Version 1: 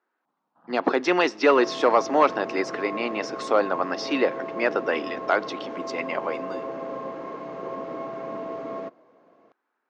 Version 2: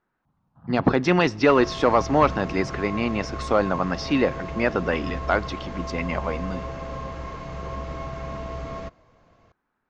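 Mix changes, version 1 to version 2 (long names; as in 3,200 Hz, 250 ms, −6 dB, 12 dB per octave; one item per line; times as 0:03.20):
second sound: add spectral tilt +4.5 dB per octave
master: remove high-pass filter 300 Hz 24 dB per octave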